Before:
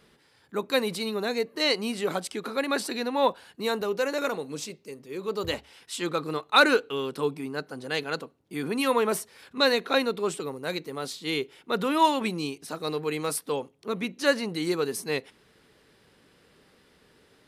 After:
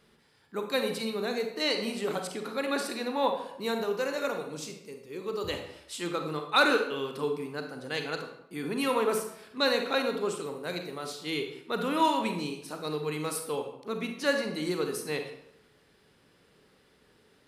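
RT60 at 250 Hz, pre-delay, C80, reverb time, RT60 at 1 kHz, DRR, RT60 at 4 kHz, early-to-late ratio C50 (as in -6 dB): 0.80 s, 33 ms, 9.5 dB, 0.75 s, 0.75 s, 4.5 dB, 0.55 s, 6.5 dB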